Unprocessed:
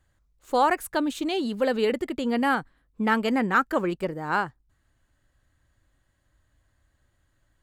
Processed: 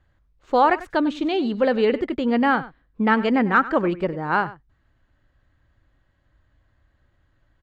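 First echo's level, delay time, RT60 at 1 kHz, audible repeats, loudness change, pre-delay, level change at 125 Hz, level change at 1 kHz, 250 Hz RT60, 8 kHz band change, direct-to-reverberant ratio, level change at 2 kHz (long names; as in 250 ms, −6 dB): −17.0 dB, 97 ms, no reverb audible, 1, +4.5 dB, no reverb audible, +5.0 dB, +4.0 dB, no reverb audible, below −10 dB, no reverb audible, +3.5 dB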